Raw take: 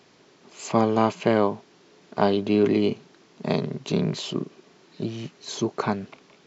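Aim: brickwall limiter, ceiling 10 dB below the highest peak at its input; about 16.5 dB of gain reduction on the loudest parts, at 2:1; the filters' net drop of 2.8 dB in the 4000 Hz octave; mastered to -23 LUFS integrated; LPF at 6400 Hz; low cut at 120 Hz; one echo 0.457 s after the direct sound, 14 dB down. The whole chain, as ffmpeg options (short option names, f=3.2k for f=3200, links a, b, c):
-af "highpass=120,lowpass=6.4k,equalizer=f=4k:t=o:g=-3,acompressor=threshold=-47dB:ratio=2,alimiter=level_in=8dB:limit=-24dB:level=0:latency=1,volume=-8dB,aecho=1:1:457:0.2,volume=21.5dB"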